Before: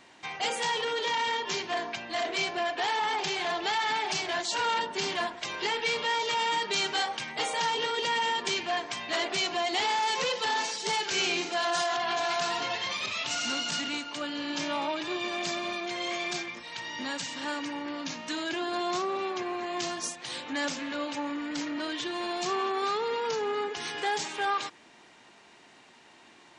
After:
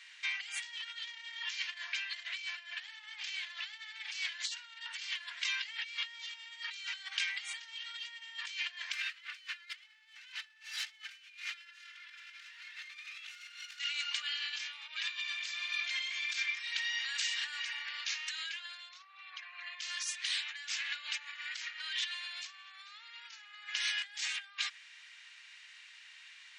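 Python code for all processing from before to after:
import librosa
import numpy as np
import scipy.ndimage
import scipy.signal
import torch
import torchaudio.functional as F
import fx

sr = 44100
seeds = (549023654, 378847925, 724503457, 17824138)

y = fx.chain(x, sr, fx.lower_of_two(delay_ms=3.3),
    fx.highpass(hz=900.0, slope=24),
    fx.peak_eq(hz=1500.0, db=12.5, octaves=2.9), at=(8.93, 13.79))
y = fx.chain(y, sr, fx.envelope_sharpen(power=1.5),
    fx.peak_eq(hz=7400.0, db=-4.5, octaves=0.26), at=(18.89, 19.81))
y = fx.over_compress(y, sr, threshold_db=-35.0, ratio=-0.5)
y = scipy.signal.sosfilt(scipy.signal.cheby2(4, 80, 310.0, 'highpass', fs=sr, output='sos'), y)
y = fx.high_shelf(y, sr, hz=5600.0, db=-12.0)
y = F.gain(torch.from_numpy(y), 1.5).numpy()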